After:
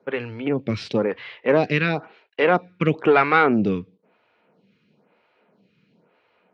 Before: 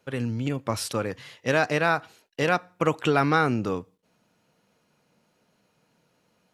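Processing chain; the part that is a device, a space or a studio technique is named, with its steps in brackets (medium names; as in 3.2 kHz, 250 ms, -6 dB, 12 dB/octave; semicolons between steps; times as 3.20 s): vibe pedal into a guitar amplifier (lamp-driven phase shifter 1 Hz; valve stage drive 15 dB, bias 0.35; cabinet simulation 98–3800 Hz, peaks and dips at 200 Hz +5 dB, 410 Hz +5 dB, 2.3 kHz +5 dB); trim +8 dB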